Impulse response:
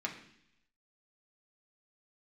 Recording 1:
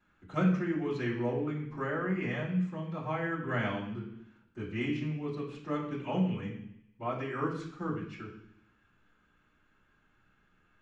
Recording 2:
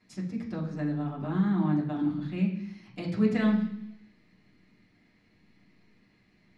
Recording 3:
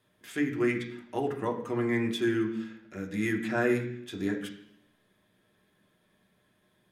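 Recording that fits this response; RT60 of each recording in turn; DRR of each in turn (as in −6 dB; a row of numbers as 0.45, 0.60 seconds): 3; 0.70, 0.70, 0.70 seconds; −17.0, −7.5, 0.0 decibels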